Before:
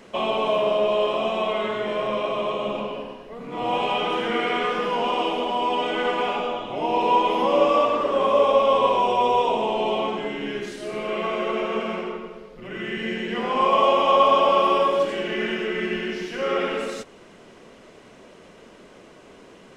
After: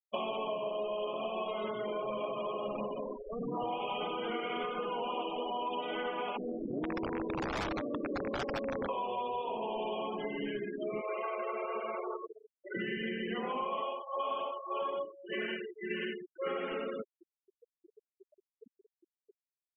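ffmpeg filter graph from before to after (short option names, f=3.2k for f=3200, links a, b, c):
-filter_complex "[0:a]asettb=1/sr,asplit=3[a][b][c];[a]atrim=end=0.514[d];[b]atrim=start=0.51:end=5.81,asetpts=PTS-STARTPTS,afade=t=in:d=0.004:c=qsin,afade=t=out:st=5.296:d=0.004:c=qsin,equalizer=f=1.8k:w=4.3:g=-7.5,aphaser=in_gain=1:out_gain=1:delay=2.8:decay=0.22:speed=1.7:type=sinusoidal[e];[c]atrim=start=5.806[f];[d][e]acrossfade=d=0.004:c1=hsin:c2=qsin[g];[g][f]acrossfade=d=0.004:c1=qsin:c2=hsin,asettb=1/sr,asplit=3[h][i][j];[h]atrim=end=6.374[k];[i]atrim=start=6.37:end=8.89,asetpts=PTS-STARTPTS,afade=t=in:d=0.004:c=qsin,afade=t=out:st=2.516:d=0.004:c=qsin,lowpass=f=310:t=q:w=2,aeval=exprs='(mod(7.94*val(0)+1,2)-1)/7.94':c=same[l];[j]atrim=start=8.886[m];[k][l]acrossfade=d=0.004:c1=hsin:c2=qsin[n];[n][m]acrossfade=d=0.004:c1=qsin:c2=hsin,asettb=1/sr,asplit=3[o][p][q];[o]atrim=end=11.014[r];[p]atrim=start=11.01:end=12.75,asetpts=PTS-STARTPTS,afade=t=in:d=0.004:c=qsin,afade=t=out:st=1.736:d=0.004:c=qsin,highpass=480,lowpass=2.8k,aeval=exprs='sgn(val(0))*max(abs(val(0))-0.00168,0)':c=same[s];[q]atrim=start=12.746[t];[r][s]acrossfade=d=0.004:c1=hsin:c2=qsin[u];[u][t]acrossfade=d=0.004:c1=qsin:c2=hsin,asettb=1/sr,asplit=3[v][w][x];[v]atrim=end=13.814[y];[w]atrim=start=13.81:end=16.47,asetpts=PTS-STARTPTS,afade=t=in:d=0.004:c=qsin,afade=t=out:st=2.656:d=0.004:c=qsin,lowshelf=f=290:g=-7.5,tremolo=f=1.8:d=0.87[z];[x]atrim=start=16.466[aa];[y][z]acrossfade=d=0.004:c1=hsin:c2=qsin[ab];[ab][aa]acrossfade=d=0.004:c1=qsin:c2=hsin,afftfilt=real='re*gte(hypot(re,im),0.0398)':imag='im*gte(hypot(re,im),0.0398)':win_size=1024:overlap=0.75,acompressor=threshold=-33dB:ratio=10"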